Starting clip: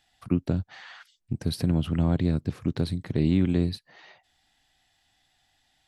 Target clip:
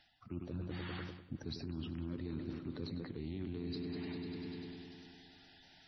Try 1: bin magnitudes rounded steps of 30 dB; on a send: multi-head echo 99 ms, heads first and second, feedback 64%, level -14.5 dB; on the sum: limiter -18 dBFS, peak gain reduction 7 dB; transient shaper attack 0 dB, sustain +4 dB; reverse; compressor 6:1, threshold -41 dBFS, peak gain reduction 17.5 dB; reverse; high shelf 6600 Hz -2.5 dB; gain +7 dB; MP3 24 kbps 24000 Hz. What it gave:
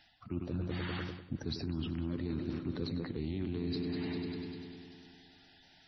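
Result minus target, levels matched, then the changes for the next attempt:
compressor: peak gain reduction -5.5 dB
change: compressor 6:1, threshold -47.5 dBFS, peak gain reduction 22.5 dB

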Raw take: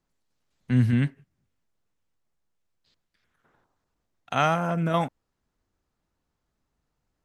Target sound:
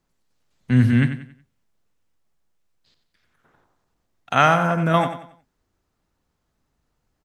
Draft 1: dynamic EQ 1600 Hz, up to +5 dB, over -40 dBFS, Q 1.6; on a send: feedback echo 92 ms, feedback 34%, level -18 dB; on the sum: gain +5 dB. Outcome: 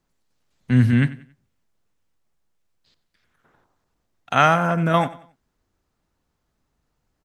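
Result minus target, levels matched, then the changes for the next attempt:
echo-to-direct -7.5 dB
change: feedback echo 92 ms, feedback 34%, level -10.5 dB

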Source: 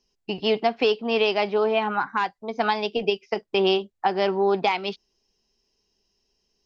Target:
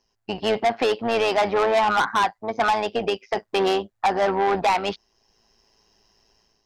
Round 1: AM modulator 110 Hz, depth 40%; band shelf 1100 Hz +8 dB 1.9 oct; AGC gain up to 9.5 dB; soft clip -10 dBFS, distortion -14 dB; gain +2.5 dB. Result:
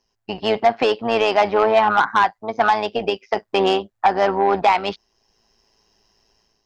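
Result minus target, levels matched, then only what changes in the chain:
soft clip: distortion -7 dB
change: soft clip -18 dBFS, distortion -7 dB

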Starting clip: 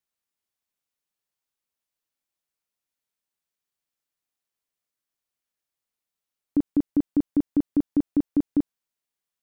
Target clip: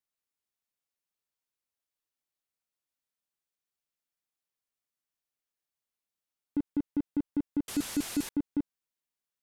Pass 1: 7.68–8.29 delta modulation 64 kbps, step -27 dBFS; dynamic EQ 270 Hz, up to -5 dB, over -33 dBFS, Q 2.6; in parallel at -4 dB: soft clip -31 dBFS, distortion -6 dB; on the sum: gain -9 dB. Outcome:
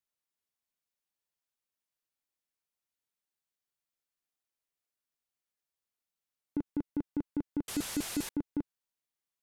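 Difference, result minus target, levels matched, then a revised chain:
500 Hz band +2.5 dB
7.68–8.29 delta modulation 64 kbps, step -27 dBFS; dynamic EQ 590 Hz, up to -5 dB, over -33 dBFS, Q 2.6; in parallel at -4 dB: soft clip -31 dBFS, distortion -5 dB; on the sum: gain -9 dB

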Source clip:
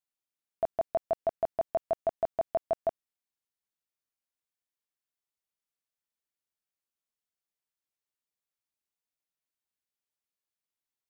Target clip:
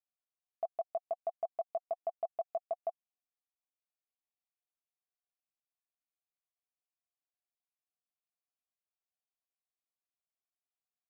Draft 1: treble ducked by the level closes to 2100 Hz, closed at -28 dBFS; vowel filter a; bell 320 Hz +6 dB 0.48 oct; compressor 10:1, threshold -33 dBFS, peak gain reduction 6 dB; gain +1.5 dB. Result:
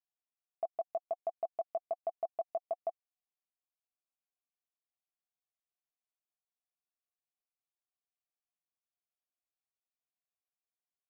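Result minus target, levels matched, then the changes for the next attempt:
250 Hz band +6.0 dB
change: bell 320 Hz -4 dB 0.48 oct

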